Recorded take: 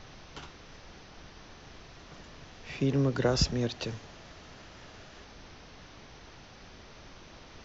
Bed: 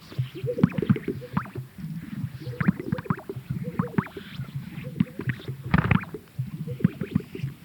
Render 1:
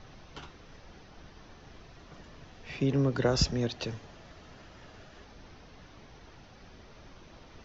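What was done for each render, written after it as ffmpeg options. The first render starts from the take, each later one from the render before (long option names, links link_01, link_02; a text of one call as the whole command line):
ffmpeg -i in.wav -af "afftdn=noise_reduction=6:noise_floor=-52" out.wav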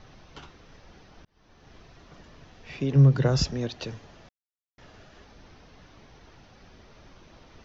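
ffmpeg -i in.wav -filter_complex "[0:a]asettb=1/sr,asplit=3[link_01][link_02][link_03];[link_01]atrim=end=2.954[link_04];[link_02]atrim=start=2.95:end=3.41,asetpts=PTS-STARTPTS,afade=type=in:duration=0.004:curve=qsin,afade=type=out:start_time=0.456:duration=0.004:curve=qsin,equalizer=frequency=140:width=3.6:gain=14.5[link_05];[link_03]atrim=start=3.406[link_06];[link_04][link_05]acrossfade=duration=0.004:curve1=hsin:curve2=qsin[link_07];[link_07][link_06]acrossfade=duration=0.004:curve1=qsin:curve2=hsin,asplit=4[link_08][link_09][link_10][link_11];[link_08]atrim=end=1.25,asetpts=PTS-STARTPTS,afade=type=out:start_time=1.246:duration=0.004:curve=hsin[link_12];[link_09]atrim=start=1.25:end=4.29,asetpts=PTS-STARTPTS,afade=type=in:duration=0.51,afade=type=out:start_time=3.036:duration=0.004:curve=hsin[link_13];[link_10]atrim=start=4.29:end=4.78,asetpts=PTS-STARTPTS,volume=0[link_14];[link_11]atrim=start=4.78,asetpts=PTS-STARTPTS,afade=type=in:duration=0.004:curve=hsin[link_15];[link_12][link_13][link_14][link_15]concat=n=4:v=0:a=1" out.wav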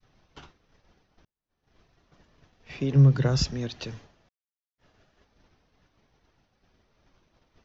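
ffmpeg -i in.wav -af "agate=range=-33dB:threshold=-41dB:ratio=3:detection=peak,adynamicequalizer=threshold=0.00794:dfrequency=580:dqfactor=0.82:tfrequency=580:tqfactor=0.82:attack=5:release=100:ratio=0.375:range=3:mode=cutabove:tftype=bell" out.wav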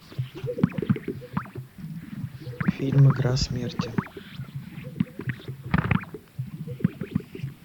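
ffmpeg -i in.wav -i bed.wav -filter_complex "[1:a]volume=-2dB[link_01];[0:a][link_01]amix=inputs=2:normalize=0" out.wav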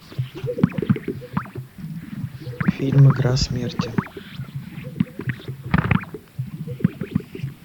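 ffmpeg -i in.wav -af "volume=4.5dB" out.wav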